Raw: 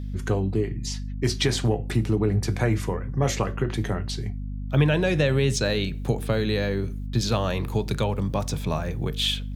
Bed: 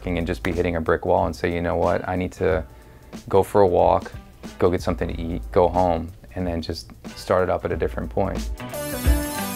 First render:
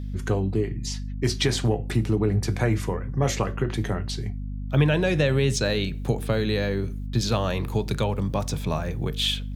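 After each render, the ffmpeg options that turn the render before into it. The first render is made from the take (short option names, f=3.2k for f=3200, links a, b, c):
-af anull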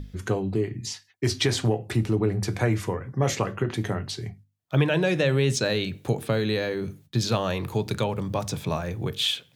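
-af "bandreject=f=50:t=h:w=6,bandreject=f=100:t=h:w=6,bandreject=f=150:t=h:w=6,bandreject=f=200:t=h:w=6,bandreject=f=250:t=h:w=6"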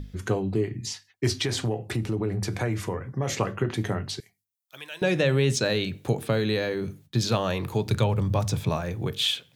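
-filter_complex "[0:a]asettb=1/sr,asplit=3[a][b][c];[a]atrim=end=1.364[d];[b]atrim=start=1.36:end=3.37,asetpts=PTS-STARTPTS,afade=t=in:d=0.004:c=qsin,afade=t=out:st=2.006:d=0.004:c=qsin,acompressor=threshold=-24dB:ratio=2.5:attack=3.2:release=140:knee=1:detection=peak[e];[c]atrim=start=3.366[f];[d][e]acrossfade=d=0.004:c1=hsin:c2=qsin[g];[g][f]acrossfade=d=0.004:c1=qsin:c2=hsin,asettb=1/sr,asplit=3[h][i][j];[h]atrim=end=4.204[k];[i]atrim=start=4.2:end=5.02,asetpts=PTS-STARTPTS,afade=t=in:d=0.004:c=qsin,afade=t=out:st=0.816:d=0.004:c=qsin,aderivative[l];[j]atrim=start=5.016[m];[k][l]acrossfade=d=0.004:c1=hsin:c2=qsin[n];[n][m]acrossfade=d=0.004:c1=qsin:c2=hsin,asettb=1/sr,asplit=3[o][p][q];[o]atrim=end=7.884[r];[p]atrim=start=7.88:end=8.71,asetpts=PTS-STARTPTS,afade=t=in:d=0.004:c=qsin,afade=t=out:st=0.826:d=0.004:c=qsin,equalizer=f=100:t=o:w=0.74:g=9[s];[q]atrim=start=8.706[t];[r][s]acrossfade=d=0.004:c1=hsin:c2=qsin[u];[u][t]acrossfade=d=0.004:c1=qsin:c2=hsin"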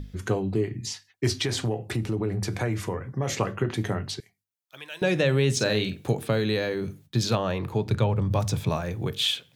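-filter_complex "[0:a]asettb=1/sr,asplit=3[a][b][c];[a]atrim=end=4.144[d];[b]atrim=start=4.14:end=4.9,asetpts=PTS-STARTPTS,afade=t=in:d=0.004:c=qsin,afade=t=out:st=0.756:d=0.004:c=qsin,highshelf=f=5.8k:g=-6[e];[c]atrim=start=4.896[f];[d][e]acrossfade=d=0.004:c1=hsin:c2=qsin[g];[g][f]acrossfade=d=0.004:c1=qsin:c2=hsin,asettb=1/sr,asplit=3[h][i][j];[h]atrim=end=5.524[k];[i]atrim=start=5.52:end=6.12,asetpts=PTS-STARTPTS,afade=t=in:d=0.004:c=qsin,afade=t=out:st=0.596:d=0.004:c=qsin,asplit=2[l][m];[m]adelay=47,volume=-9dB[n];[l][n]amix=inputs=2:normalize=0,atrim=end_sample=26460[o];[j]atrim=start=6.116[p];[k][o]acrossfade=d=0.004:c1=hsin:c2=qsin[q];[q][p]acrossfade=d=0.004:c1=qsin:c2=hsin,asettb=1/sr,asplit=3[r][s][t];[r]atrim=end=7.354[u];[s]atrim=start=7.35:end=8.31,asetpts=PTS-STARTPTS,afade=t=in:d=0.004:c=qsin,afade=t=out:st=0.956:d=0.004:c=qsin,highshelf=f=4k:g=-11[v];[t]atrim=start=8.306[w];[u][v]acrossfade=d=0.004:c1=hsin:c2=qsin[x];[x][w]acrossfade=d=0.004:c1=qsin:c2=hsin"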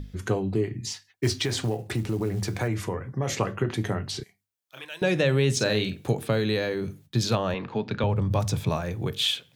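-filter_complex "[0:a]asettb=1/sr,asplit=3[a][b][c];[a]atrim=end=0.884[d];[b]atrim=start=0.88:end=2.68,asetpts=PTS-STARTPTS,afade=t=in:d=0.004:c=qsin,afade=t=out:st=1.796:d=0.004:c=qsin,acrusher=bits=7:mode=log:mix=0:aa=0.000001[e];[c]atrim=start=2.676[f];[d][e]acrossfade=d=0.004:c1=hsin:c2=qsin[g];[g][f]acrossfade=d=0.004:c1=qsin:c2=hsin,asettb=1/sr,asplit=3[h][i][j];[h]atrim=end=4.114[k];[i]atrim=start=4.11:end=4.85,asetpts=PTS-STARTPTS,afade=t=in:d=0.004:c=qsin,afade=t=out:st=0.736:d=0.004:c=qsin,asplit=2[l][m];[m]adelay=31,volume=-2dB[n];[l][n]amix=inputs=2:normalize=0,atrim=end_sample=32634[o];[j]atrim=start=4.846[p];[k][o]acrossfade=d=0.004:c1=hsin:c2=qsin[q];[q][p]acrossfade=d=0.004:c1=qsin:c2=hsin,asettb=1/sr,asplit=3[r][s][t];[r]atrim=end=7.544[u];[s]atrim=start=7.54:end=8.04,asetpts=PTS-STARTPTS,afade=t=in:d=0.004:c=qsin,afade=t=out:st=0.496:d=0.004:c=qsin,highpass=190,equalizer=f=240:t=q:w=4:g=6,equalizer=f=350:t=q:w=4:g=-6,equalizer=f=1.6k:t=q:w=4:g=5,equalizer=f=2.8k:t=q:w=4:g=4,lowpass=f=5.2k:w=0.5412,lowpass=f=5.2k:w=1.3066[v];[t]atrim=start=8.036[w];[u][v]acrossfade=d=0.004:c1=hsin:c2=qsin[x];[x][w]acrossfade=d=0.004:c1=qsin:c2=hsin"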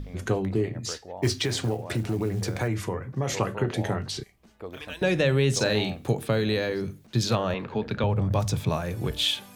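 -filter_complex "[1:a]volume=-20.5dB[a];[0:a][a]amix=inputs=2:normalize=0"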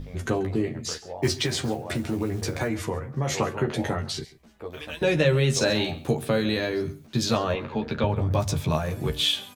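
-filter_complex "[0:a]asplit=2[a][b];[b]adelay=13,volume=-4dB[c];[a][c]amix=inputs=2:normalize=0,aecho=1:1:136:0.106"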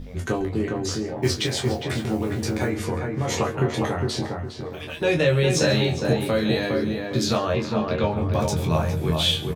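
-filter_complex "[0:a]asplit=2[a][b];[b]adelay=24,volume=-5dB[c];[a][c]amix=inputs=2:normalize=0,asplit=2[d][e];[e]adelay=408,lowpass=f=1.7k:p=1,volume=-3dB,asplit=2[f][g];[g]adelay=408,lowpass=f=1.7k:p=1,volume=0.33,asplit=2[h][i];[i]adelay=408,lowpass=f=1.7k:p=1,volume=0.33,asplit=2[j][k];[k]adelay=408,lowpass=f=1.7k:p=1,volume=0.33[l];[d][f][h][j][l]amix=inputs=5:normalize=0"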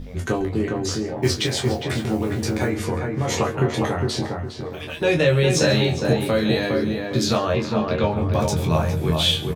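-af "volume=2dB"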